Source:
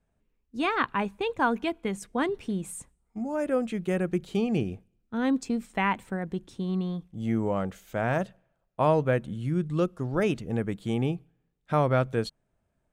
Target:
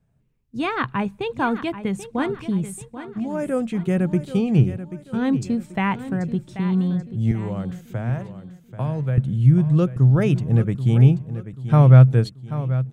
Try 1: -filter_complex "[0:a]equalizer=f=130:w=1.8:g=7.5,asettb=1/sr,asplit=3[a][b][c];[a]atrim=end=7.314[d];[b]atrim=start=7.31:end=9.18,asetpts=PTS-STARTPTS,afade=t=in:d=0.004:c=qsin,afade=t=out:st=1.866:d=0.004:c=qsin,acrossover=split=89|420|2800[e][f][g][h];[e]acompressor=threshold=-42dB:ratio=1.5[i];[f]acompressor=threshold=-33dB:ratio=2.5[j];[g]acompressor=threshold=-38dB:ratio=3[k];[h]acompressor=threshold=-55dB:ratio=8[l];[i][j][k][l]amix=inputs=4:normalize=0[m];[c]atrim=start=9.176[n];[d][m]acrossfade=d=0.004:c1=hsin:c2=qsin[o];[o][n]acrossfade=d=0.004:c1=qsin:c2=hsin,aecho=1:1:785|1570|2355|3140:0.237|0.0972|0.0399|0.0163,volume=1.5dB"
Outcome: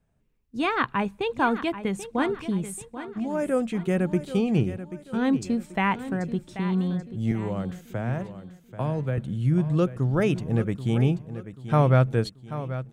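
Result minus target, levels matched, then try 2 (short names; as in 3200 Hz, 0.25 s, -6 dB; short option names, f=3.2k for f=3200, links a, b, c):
125 Hz band -3.0 dB
-filter_complex "[0:a]equalizer=f=130:w=1.8:g=18.5,asettb=1/sr,asplit=3[a][b][c];[a]atrim=end=7.314[d];[b]atrim=start=7.31:end=9.18,asetpts=PTS-STARTPTS,afade=t=in:d=0.004:c=qsin,afade=t=out:st=1.866:d=0.004:c=qsin,acrossover=split=89|420|2800[e][f][g][h];[e]acompressor=threshold=-42dB:ratio=1.5[i];[f]acompressor=threshold=-33dB:ratio=2.5[j];[g]acompressor=threshold=-38dB:ratio=3[k];[h]acompressor=threshold=-55dB:ratio=8[l];[i][j][k][l]amix=inputs=4:normalize=0[m];[c]atrim=start=9.176[n];[d][m]acrossfade=d=0.004:c1=hsin:c2=qsin[o];[o][n]acrossfade=d=0.004:c1=qsin:c2=hsin,aecho=1:1:785|1570|2355|3140:0.237|0.0972|0.0399|0.0163,volume=1.5dB"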